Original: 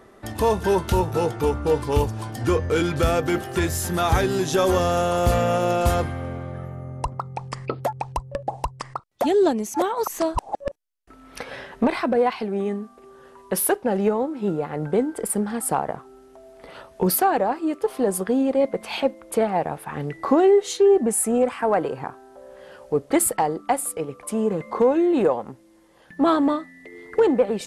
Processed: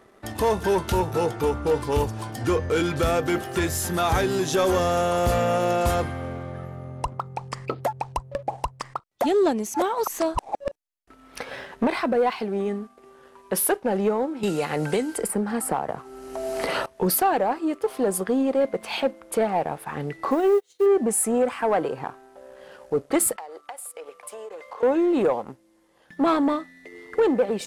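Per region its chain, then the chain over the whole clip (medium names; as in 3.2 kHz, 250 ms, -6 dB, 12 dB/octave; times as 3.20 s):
14.43–16.86 s: band-stop 3.5 kHz, Q 9.2 + three bands compressed up and down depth 100%
20.31–20.86 s: word length cut 8-bit, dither triangular + upward expansion 2.5:1, over -31 dBFS
23.36–24.83 s: high-pass 480 Hz 24 dB/octave + compression 16:1, threshold -33 dBFS
whole clip: bass shelf 200 Hz -4 dB; waveshaping leveller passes 1; trim -3.5 dB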